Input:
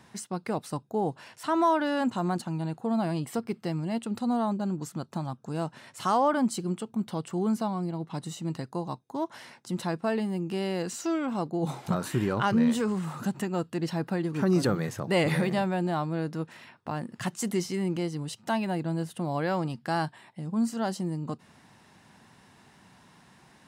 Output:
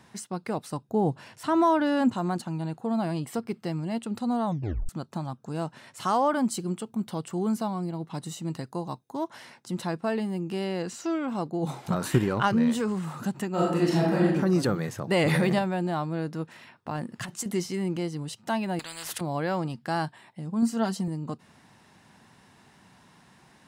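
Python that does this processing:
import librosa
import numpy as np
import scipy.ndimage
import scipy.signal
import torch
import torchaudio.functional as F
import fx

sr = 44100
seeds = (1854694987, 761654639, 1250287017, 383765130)

y = fx.low_shelf(x, sr, hz=260.0, db=10.0, at=(0.89, 2.14))
y = fx.high_shelf(y, sr, hz=8500.0, db=5.5, at=(6.14, 9.28))
y = fx.high_shelf(y, sr, hz=fx.line((10.64, 11000.0), (11.26, 7000.0)), db=-10.0, at=(10.64, 11.26), fade=0.02)
y = fx.transient(y, sr, attack_db=8, sustain_db=4, at=(11.92, 12.52))
y = fx.reverb_throw(y, sr, start_s=13.52, length_s=0.73, rt60_s=0.92, drr_db=-6.0)
y = fx.env_flatten(y, sr, amount_pct=70, at=(15.11, 15.59))
y = fx.over_compress(y, sr, threshold_db=-32.0, ratio=-0.5, at=(16.95, 17.46))
y = fx.spectral_comp(y, sr, ratio=10.0, at=(18.79, 19.21))
y = fx.comb(y, sr, ms=4.4, depth=0.68, at=(20.62, 21.08))
y = fx.edit(y, sr, fx.tape_stop(start_s=4.46, length_s=0.43), tone=tone)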